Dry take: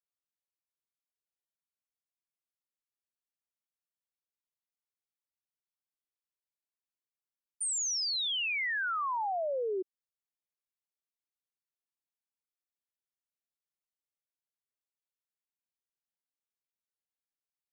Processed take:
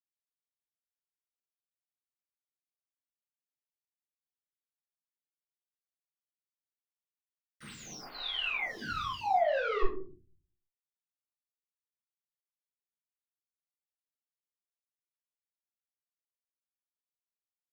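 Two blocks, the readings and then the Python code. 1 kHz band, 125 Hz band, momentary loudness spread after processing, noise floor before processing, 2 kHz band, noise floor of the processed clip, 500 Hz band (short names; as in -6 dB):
+2.0 dB, n/a, 17 LU, under -85 dBFS, -2.5 dB, under -85 dBFS, +2.0 dB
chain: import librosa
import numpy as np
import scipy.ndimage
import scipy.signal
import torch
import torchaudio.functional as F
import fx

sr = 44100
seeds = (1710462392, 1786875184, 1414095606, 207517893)

p1 = scipy.signal.sosfilt(scipy.signal.butter(2, 1000.0, 'highpass', fs=sr, output='sos'), x)
p2 = fx.peak_eq(p1, sr, hz=7900.0, db=9.5, octaves=1.2)
p3 = fx.fold_sine(p2, sr, drive_db=12, ceiling_db=-19.5)
p4 = p2 + (p3 * 10.0 ** (-8.0 / 20.0))
p5 = fx.spec_paint(p4, sr, seeds[0], shape='fall', start_s=8.16, length_s=0.85, low_hz=2500.0, high_hz=5000.0, level_db=-34.0)
p6 = fx.schmitt(p5, sr, flips_db=-45.0)
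p7 = fx.air_absorb(p6, sr, metres=270.0)
p8 = fx.room_shoebox(p7, sr, seeds[1], volume_m3=380.0, walls='furnished', distance_m=6.9)
p9 = fx.stagger_phaser(p8, sr, hz=0.75)
y = p9 * 10.0 ** (-2.0 / 20.0)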